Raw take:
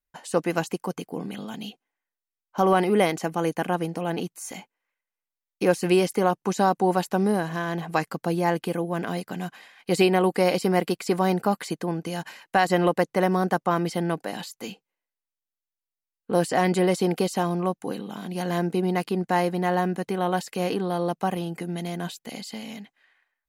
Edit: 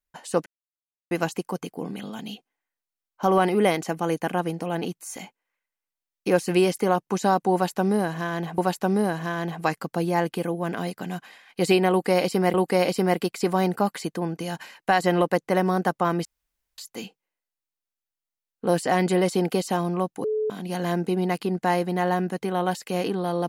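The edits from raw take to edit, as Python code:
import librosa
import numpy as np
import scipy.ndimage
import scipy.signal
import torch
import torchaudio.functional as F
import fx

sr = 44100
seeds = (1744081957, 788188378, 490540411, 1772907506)

y = fx.edit(x, sr, fx.insert_silence(at_s=0.46, length_s=0.65),
    fx.repeat(start_s=6.88, length_s=1.05, count=2),
    fx.repeat(start_s=10.2, length_s=0.64, count=2),
    fx.room_tone_fill(start_s=13.91, length_s=0.53),
    fx.bleep(start_s=17.9, length_s=0.26, hz=431.0, db=-22.0), tone=tone)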